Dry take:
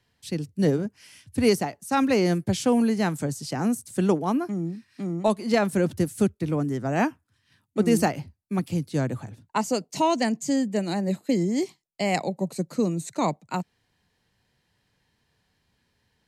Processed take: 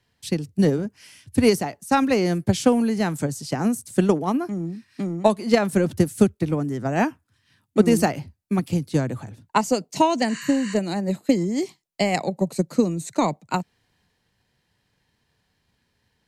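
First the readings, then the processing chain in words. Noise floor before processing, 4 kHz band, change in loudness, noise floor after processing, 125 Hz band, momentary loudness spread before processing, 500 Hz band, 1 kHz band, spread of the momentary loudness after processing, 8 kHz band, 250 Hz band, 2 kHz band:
-72 dBFS, +2.5 dB, +3.0 dB, -72 dBFS, +2.5 dB, 10 LU, +3.0 dB, +3.0 dB, 9 LU, +2.0 dB, +3.0 dB, +2.5 dB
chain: spectral replace 10.31–10.72 s, 990–11000 Hz after; transient shaper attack +7 dB, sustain +3 dB

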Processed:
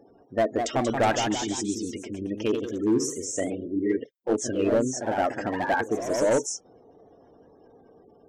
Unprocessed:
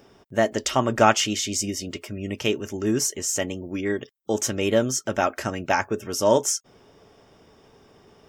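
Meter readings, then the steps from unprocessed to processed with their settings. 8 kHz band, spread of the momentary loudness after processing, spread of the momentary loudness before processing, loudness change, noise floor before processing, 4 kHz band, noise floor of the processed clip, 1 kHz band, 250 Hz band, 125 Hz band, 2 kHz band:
-6.5 dB, 8 LU, 11 LU, -2.5 dB, -56 dBFS, -7.5 dB, -56 dBFS, -3.0 dB, +0.5 dB, -5.0 dB, -4.0 dB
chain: spectral gate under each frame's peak -15 dB strong; small resonant body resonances 300/480/700/1600 Hz, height 10 dB, ringing for 25 ms; hard clipper -10 dBFS, distortion -11 dB; ever faster or slower copies 222 ms, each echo +1 st, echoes 3, each echo -6 dB; trim -7.5 dB

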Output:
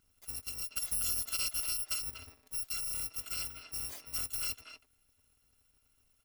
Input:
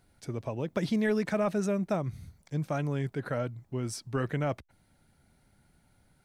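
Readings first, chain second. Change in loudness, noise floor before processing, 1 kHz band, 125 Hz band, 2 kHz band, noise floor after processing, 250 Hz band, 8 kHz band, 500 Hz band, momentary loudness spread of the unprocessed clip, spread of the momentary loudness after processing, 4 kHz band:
-2.5 dB, -68 dBFS, -15.0 dB, -22.0 dB, -7.0 dB, -73 dBFS, -29.0 dB, +12.0 dB, -28.5 dB, 9 LU, 10 LU, +8.5 dB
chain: bit-reversed sample order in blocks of 256 samples; speakerphone echo 240 ms, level -6 dB; trim -6.5 dB

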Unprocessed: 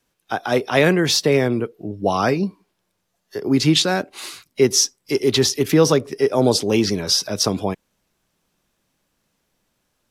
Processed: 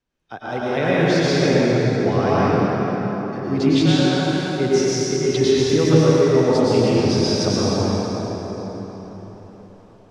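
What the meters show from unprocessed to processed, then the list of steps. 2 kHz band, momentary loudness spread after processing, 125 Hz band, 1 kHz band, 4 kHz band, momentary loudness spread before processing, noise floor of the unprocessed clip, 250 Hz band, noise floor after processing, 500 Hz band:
-0.5 dB, 14 LU, +5.0 dB, +1.5 dB, -4.0 dB, 13 LU, -73 dBFS, +3.0 dB, -47 dBFS, +2.0 dB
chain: bass shelf 120 Hz +8.5 dB; level rider gain up to 14 dB; distance through air 91 m; plate-style reverb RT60 4.7 s, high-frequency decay 0.6×, pre-delay 90 ms, DRR -9 dB; trim -11 dB

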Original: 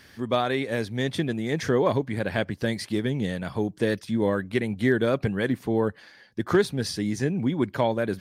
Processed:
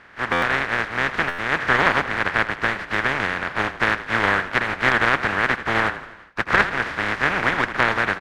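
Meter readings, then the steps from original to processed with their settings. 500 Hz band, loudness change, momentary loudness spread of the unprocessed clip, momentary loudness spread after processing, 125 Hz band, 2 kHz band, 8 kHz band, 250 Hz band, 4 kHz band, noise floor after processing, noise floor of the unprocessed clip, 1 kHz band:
-2.5 dB, +5.5 dB, 6 LU, 6 LU, -3.5 dB, +15.0 dB, -0.5 dB, -5.0 dB, +6.5 dB, -42 dBFS, -53 dBFS, +11.0 dB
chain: spectral contrast reduction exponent 0.13; resonant low-pass 1.7 kHz, resonance Q 2.5; frequency-shifting echo 82 ms, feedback 54%, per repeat -30 Hz, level -14.5 dB; buffer glitch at 0.32/1.28 s, samples 512, times 8; transformer saturation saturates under 710 Hz; trim +7 dB

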